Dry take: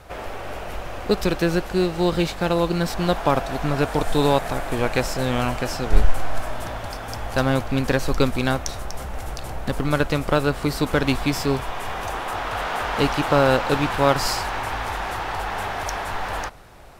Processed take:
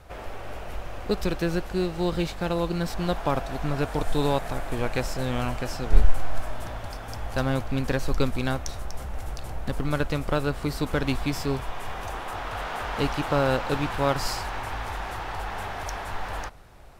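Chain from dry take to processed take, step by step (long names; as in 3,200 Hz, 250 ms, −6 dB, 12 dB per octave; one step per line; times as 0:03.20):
low-shelf EQ 120 Hz +6 dB
level −6.5 dB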